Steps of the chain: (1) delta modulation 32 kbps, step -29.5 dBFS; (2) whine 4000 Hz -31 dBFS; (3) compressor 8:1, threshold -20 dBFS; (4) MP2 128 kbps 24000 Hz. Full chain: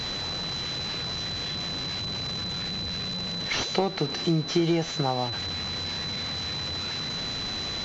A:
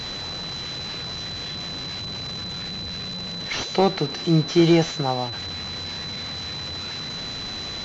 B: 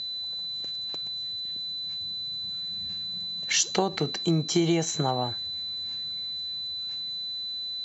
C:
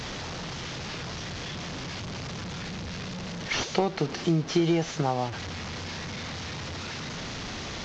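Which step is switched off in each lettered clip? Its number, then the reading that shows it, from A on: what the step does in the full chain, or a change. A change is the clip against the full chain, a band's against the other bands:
3, momentary loudness spread change +6 LU; 1, 8 kHz band +8.5 dB; 2, 4 kHz band -9.0 dB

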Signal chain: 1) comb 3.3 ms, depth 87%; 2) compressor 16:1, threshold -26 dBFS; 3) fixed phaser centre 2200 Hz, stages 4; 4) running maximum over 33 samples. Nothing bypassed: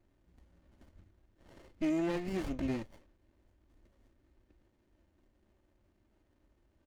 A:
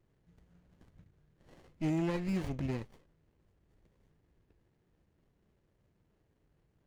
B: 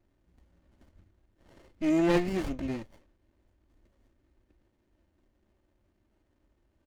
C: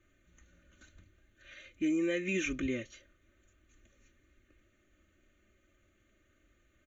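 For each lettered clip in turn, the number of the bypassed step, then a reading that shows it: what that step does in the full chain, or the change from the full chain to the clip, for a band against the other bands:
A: 1, 125 Hz band +8.0 dB; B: 2, mean gain reduction 3.0 dB; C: 4, distortion -4 dB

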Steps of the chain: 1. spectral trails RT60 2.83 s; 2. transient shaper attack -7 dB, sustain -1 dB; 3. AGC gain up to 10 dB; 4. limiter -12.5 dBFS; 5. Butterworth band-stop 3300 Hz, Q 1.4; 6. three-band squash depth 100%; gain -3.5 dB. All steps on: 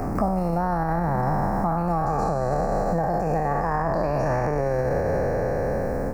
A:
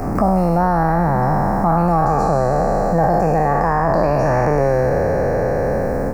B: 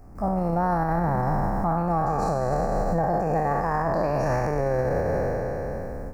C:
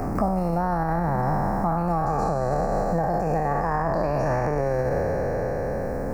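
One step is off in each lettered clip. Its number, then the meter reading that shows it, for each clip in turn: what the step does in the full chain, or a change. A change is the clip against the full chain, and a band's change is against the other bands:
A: 4, mean gain reduction 5.0 dB; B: 6, crest factor change -5.0 dB; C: 3, momentary loudness spread change +1 LU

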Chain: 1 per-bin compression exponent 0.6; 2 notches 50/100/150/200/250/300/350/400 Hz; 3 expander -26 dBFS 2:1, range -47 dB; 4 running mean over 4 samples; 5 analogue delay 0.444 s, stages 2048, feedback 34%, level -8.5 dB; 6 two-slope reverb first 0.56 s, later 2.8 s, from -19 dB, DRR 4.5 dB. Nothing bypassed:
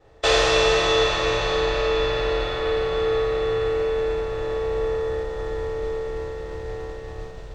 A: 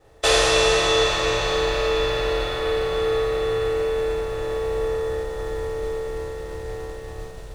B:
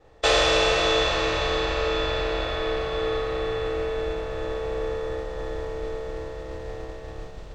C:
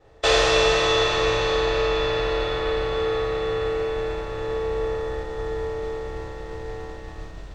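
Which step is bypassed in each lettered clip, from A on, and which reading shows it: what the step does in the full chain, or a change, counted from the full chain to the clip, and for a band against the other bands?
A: 4, 4 kHz band +1.5 dB; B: 6, momentary loudness spread change +1 LU; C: 5, momentary loudness spread change +2 LU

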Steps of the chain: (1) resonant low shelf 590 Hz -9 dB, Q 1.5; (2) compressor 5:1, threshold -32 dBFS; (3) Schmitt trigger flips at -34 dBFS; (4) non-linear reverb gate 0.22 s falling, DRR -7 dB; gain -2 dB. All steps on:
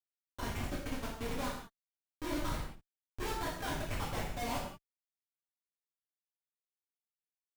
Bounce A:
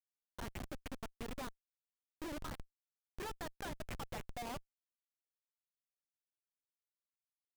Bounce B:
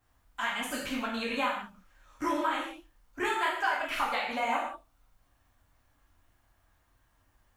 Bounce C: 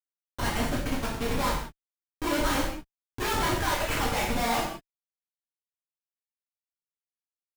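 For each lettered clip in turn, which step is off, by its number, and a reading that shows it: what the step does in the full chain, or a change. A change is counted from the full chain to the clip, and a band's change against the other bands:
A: 4, momentary loudness spread change -6 LU; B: 3, crest factor change +2.0 dB; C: 2, mean gain reduction 6.0 dB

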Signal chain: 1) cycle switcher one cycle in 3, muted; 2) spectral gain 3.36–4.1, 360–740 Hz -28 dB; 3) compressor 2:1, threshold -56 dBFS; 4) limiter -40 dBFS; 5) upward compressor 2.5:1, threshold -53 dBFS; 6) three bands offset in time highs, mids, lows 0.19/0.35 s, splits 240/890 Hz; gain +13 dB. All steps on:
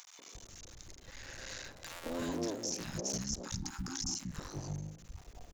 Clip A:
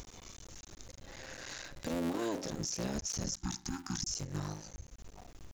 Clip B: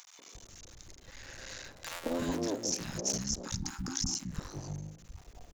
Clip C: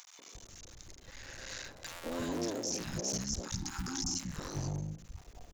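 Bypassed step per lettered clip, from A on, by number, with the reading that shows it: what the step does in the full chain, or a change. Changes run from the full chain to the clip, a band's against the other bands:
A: 6, echo-to-direct -6.5 dB to none; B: 4, crest factor change +1.5 dB; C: 3, mean gain reduction 13.0 dB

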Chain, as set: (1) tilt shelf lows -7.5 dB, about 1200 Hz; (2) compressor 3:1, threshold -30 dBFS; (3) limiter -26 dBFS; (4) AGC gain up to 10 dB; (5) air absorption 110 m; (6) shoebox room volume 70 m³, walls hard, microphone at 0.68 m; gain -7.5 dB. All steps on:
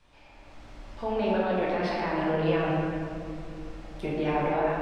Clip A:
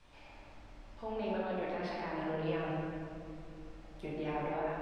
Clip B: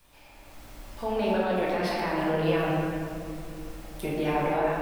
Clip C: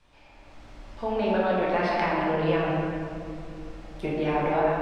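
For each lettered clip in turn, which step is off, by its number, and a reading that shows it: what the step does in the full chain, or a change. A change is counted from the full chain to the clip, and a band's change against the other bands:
4, momentary loudness spread change +5 LU; 5, 4 kHz band +2.5 dB; 3, 1 kHz band +1.5 dB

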